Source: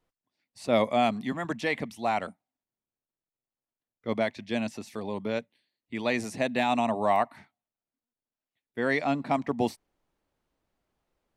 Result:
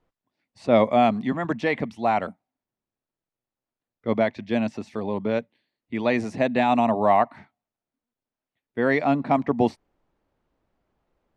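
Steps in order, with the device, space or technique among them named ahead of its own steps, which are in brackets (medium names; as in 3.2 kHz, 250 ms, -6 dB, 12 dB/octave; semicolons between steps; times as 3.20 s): through cloth (low-pass 7.1 kHz 12 dB/octave; treble shelf 2.8 kHz -11.5 dB); trim +6.5 dB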